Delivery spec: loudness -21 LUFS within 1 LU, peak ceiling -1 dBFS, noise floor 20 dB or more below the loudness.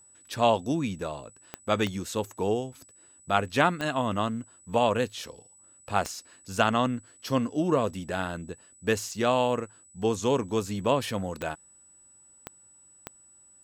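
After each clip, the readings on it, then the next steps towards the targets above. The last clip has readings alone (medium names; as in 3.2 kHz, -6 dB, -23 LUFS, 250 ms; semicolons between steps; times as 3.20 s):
clicks found 7; steady tone 7.9 kHz; tone level -54 dBFS; loudness -28.0 LUFS; peak level -7.0 dBFS; loudness target -21.0 LUFS
-> de-click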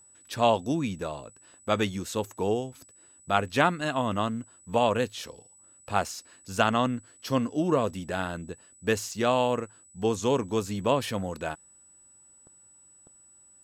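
clicks found 0; steady tone 7.9 kHz; tone level -54 dBFS
-> band-stop 7.9 kHz, Q 30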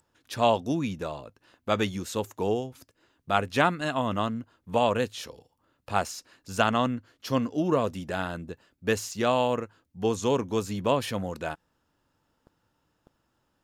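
steady tone not found; loudness -28.0 LUFS; peak level -7.0 dBFS; loudness target -21.0 LUFS
-> trim +7 dB; peak limiter -1 dBFS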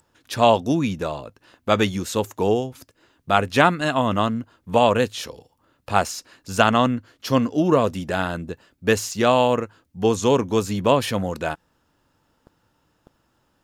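loudness -21.5 LUFS; peak level -1.0 dBFS; noise floor -68 dBFS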